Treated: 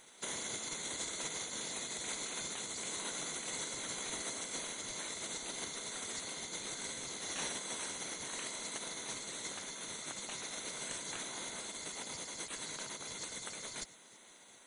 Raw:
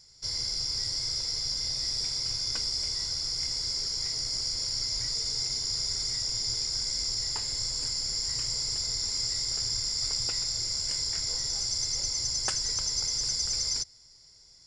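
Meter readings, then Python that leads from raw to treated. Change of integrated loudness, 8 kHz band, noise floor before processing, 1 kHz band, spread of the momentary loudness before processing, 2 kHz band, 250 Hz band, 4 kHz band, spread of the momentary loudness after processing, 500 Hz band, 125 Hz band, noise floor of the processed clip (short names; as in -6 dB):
-12.0 dB, -8.0 dB, -56 dBFS, +2.5 dB, 2 LU, +2.0 dB, +2.5 dB, -15.5 dB, 4 LU, +3.0 dB, -13.5 dB, -59 dBFS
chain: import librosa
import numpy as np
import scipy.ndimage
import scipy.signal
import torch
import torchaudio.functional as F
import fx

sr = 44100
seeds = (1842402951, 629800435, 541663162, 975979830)

y = fx.over_compress(x, sr, threshold_db=-34.0, ratio=-0.5)
y = fx.spec_gate(y, sr, threshold_db=-20, keep='weak')
y = y * librosa.db_to_amplitude(8.5)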